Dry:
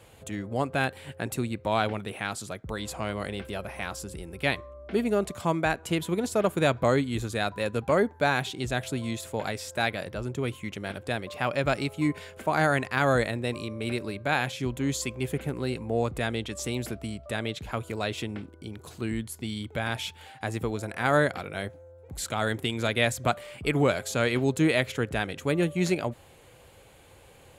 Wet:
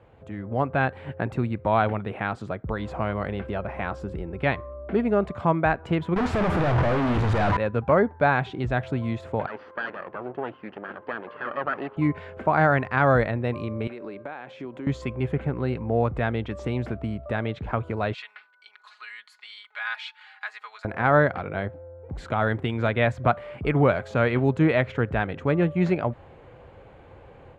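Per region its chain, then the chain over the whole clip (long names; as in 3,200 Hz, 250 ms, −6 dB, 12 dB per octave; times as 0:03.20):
0:06.16–0:07.57: sign of each sample alone + double-tracking delay 48 ms −11 dB
0:09.46–0:11.97: lower of the sound and its delayed copy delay 0.66 ms + high-pass filter 340 Hz + high-frequency loss of the air 280 metres
0:13.87–0:14.87: high-pass filter 280 Hz + downward compressor 5 to 1, threshold −39 dBFS
0:18.14–0:20.85: high-pass filter 1,300 Hz 24 dB per octave + parametric band 4,300 Hz +10 dB 0.31 octaves + comb filter 4.8 ms, depth 72%
whole clip: low-pass filter 1,500 Hz 12 dB per octave; dynamic equaliser 340 Hz, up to −5 dB, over −37 dBFS, Q 0.79; automatic gain control gain up to 7 dB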